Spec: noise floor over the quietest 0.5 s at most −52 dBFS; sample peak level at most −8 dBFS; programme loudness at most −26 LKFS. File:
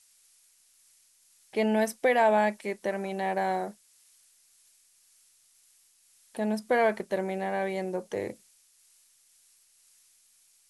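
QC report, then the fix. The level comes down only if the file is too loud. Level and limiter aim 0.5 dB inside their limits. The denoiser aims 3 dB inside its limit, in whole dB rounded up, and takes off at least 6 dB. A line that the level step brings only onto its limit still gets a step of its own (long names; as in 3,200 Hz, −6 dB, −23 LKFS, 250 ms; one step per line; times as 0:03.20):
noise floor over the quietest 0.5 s −64 dBFS: in spec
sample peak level −12.5 dBFS: in spec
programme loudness −28.5 LKFS: in spec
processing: no processing needed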